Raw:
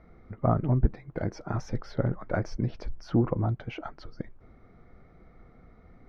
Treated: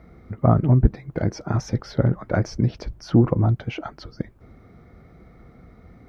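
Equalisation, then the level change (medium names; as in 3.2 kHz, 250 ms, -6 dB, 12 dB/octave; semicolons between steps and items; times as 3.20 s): high-pass 51 Hz; bass shelf 430 Hz +6.5 dB; treble shelf 3.2 kHz +10 dB; +3.0 dB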